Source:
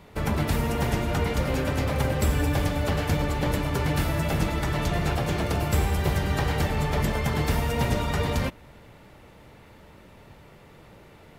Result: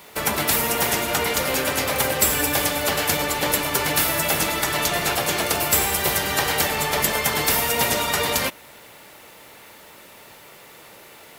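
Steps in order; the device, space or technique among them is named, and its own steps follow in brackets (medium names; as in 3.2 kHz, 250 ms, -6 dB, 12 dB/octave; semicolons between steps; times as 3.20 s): turntable without a phono preamp (RIAA curve recording; white noise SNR 34 dB); tone controls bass -3 dB, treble -2 dB; trim +6.5 dB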